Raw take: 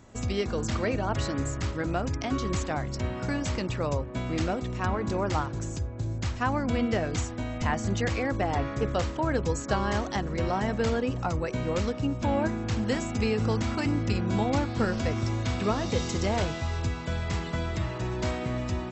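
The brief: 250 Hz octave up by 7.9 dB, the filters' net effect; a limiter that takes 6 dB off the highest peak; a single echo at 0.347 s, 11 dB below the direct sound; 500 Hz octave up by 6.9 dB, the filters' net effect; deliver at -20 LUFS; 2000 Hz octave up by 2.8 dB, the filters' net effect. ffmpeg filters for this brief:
-af "equalizer=f=250:t=o:g=8,equalizer=f=500:t=o:g=6,equalizer=f=2k:t=o:g=3,alimiter=limit=-13.5dB:level=0:latency=1,aecho=1:1:347:0.282,volume=4.5dB"

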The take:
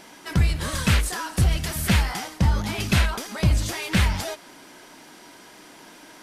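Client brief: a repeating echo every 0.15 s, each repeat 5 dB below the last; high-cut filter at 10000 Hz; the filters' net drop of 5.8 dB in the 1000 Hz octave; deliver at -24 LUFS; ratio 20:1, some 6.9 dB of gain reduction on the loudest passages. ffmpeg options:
-af "lowpass=10k,equalizer=f=1k:t=o:g=-7.5,acompressor=threshold=-21dB:ratio=20,aecho=1:1:150|300|450|600|750|900|1050:0.562|0.315|0.176|0.0988|0.0553|0.031|0.0173,volume=3.5dB"

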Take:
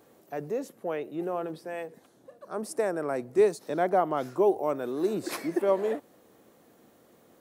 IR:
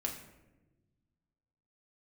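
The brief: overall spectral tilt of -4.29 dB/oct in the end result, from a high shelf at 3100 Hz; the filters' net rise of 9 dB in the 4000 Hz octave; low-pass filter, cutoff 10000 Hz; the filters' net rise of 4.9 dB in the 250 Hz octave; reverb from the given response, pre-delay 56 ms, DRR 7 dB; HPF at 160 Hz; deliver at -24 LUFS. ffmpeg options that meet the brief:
-filter_complex "[0:a]highpass=160,lowpass=10k,equalizer=f=250:t=o:g=8,highshelf=f=3.1k:g=8.5,equalizer=f=4k:t=o:g=4.5,asplit=2[a][b];[1:a]atrim=start_sample=2205,adelay=56[c];[b][c]afir=irnorm=-1:irlink=0,volume=-8.5dB[d];[a][d]amix=inputs=2:normalize=0,volume=1.5dB"

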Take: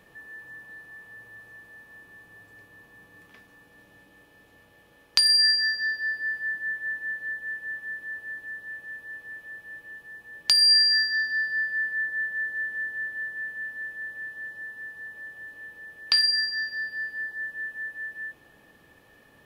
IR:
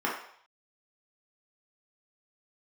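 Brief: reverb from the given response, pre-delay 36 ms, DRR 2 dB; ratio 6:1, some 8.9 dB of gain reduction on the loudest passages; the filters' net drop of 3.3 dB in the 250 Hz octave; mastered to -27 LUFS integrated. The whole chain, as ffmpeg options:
-filter_complex "[0:a]equalizer=f=250:t=o:g=-4.5,acompressor=threshold=-27dB:ratio=6,asplit=2[a][b];[1:a]atrim=start_sample=2205,adelay=36[c];[b][c]afir=irnorm=-1:irlink=0,volume=-13dB[d];[a][d]amix=inputs=2:normalize=0,volume=1dB"

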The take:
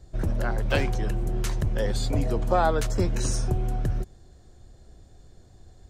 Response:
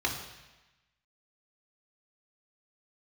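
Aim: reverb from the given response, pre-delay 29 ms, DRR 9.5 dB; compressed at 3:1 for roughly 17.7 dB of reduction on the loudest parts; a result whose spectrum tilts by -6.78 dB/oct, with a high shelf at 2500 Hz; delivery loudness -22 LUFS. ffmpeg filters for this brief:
-filter_complex "[0:a]highshelf=f=2.5k:g=-8,acompressor=threshold=-44dB:ratio=3,asplit=2[a][b];[1:a]atrim=start_sample=2205,adelay=29[c];[b][c]afir=irnorm=-1:irlink=0,volume=-18dB[d];[a][d]amix=inputs=2:normalize=0,volume=22dB"

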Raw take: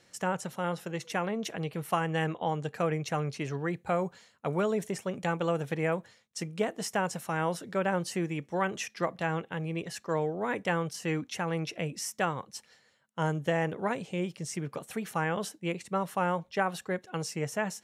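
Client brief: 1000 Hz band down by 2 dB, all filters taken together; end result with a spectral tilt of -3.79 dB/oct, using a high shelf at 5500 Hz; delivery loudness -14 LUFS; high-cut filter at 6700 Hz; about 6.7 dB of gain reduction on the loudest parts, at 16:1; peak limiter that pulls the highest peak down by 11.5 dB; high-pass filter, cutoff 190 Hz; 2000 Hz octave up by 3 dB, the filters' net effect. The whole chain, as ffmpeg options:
-af "highpass=190,lowpass=6.7k,equalizer=f=1k:t=o:g=-4,equalizer=f=2k:t=o:g=4.5,highshelf=f=5.5k:g=7,acompressor=threshold=-30dB:ratio=16,volume=27dB,alimiter=limit=-2.5dB:level=0:latency=1"

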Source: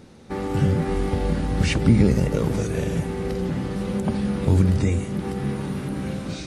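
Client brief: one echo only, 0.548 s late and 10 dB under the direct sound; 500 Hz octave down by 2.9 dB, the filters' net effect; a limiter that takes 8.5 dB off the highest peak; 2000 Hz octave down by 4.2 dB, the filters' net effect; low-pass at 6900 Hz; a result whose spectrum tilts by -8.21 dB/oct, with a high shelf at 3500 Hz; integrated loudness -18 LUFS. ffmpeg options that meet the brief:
-af "lowpass=6.9k,equalizer=f=500:t=o:g=-3.5,equalizer=f=2k:t=o:g=-3,highshelf=f=3.5k:g=-6.5,alimiter=limit=-14.5dB:level=0:latency=1,aecho=1:1:548:0.316,volume=7.5dB"

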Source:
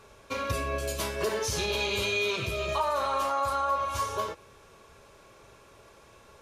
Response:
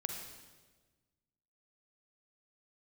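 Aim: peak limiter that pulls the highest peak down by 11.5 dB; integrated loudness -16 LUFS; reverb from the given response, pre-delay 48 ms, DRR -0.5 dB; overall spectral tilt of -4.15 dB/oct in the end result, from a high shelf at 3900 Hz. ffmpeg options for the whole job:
-filter_complex "[0:a]highshelf=f=3.9k:g=-8.5,alimiter=level_in=6dB:limit=-24dB:level=0:latency=1,volume=-6dB,asplit=2[a][b];[1:a]atrim=start_sample=2205,adelay=48[c];[b][c]afir=irnorm=-1:irlink=0,volume=0dB[d];[a][d]amix=inputs=2:normalize=0,volume=18.5dB"

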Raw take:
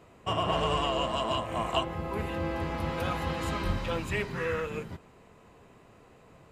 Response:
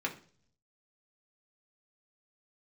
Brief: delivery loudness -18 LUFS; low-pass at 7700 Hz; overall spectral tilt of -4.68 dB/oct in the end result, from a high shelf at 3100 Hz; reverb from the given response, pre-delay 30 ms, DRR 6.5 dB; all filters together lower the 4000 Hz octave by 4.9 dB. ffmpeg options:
-filter_complex "[0:a]lowpass=7.7k,highshelf=f=3.1k:g=-4.5,equalizer=f=4k:t=o:g=-4.5,asplit=2[a][b];[1:a]atrim=start_sample=2205,adelay=30[c];[b][c]afir=irnorm=-1:irlink=0,volume=-11.5dB[d];[a][d]amix=inputs=2:normalize=0,volume=13dB"

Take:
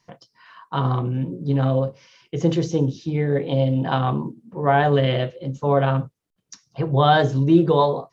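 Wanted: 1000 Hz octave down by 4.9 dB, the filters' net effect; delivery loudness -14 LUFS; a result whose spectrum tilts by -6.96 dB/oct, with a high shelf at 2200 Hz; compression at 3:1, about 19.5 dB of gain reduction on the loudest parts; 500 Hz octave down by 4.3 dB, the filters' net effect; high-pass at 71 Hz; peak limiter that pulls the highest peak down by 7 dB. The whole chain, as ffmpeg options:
-af "highpass=71,equalizer=f=500:t=o:g=-4,equalizer=f=1k:t=o:g=-4.5,highshelf=f=2.2k:g=-3,acompressor=threshold=-40dB:ratio=3,volume=26.5dB,alimiter=limit=-4dB:level=0:latency=1"

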